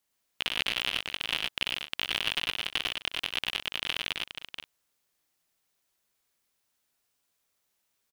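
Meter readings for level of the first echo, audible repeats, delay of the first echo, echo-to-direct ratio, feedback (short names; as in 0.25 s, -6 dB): -15.5 dB, 4, 64 ms, -0.5 dB, no steady repeat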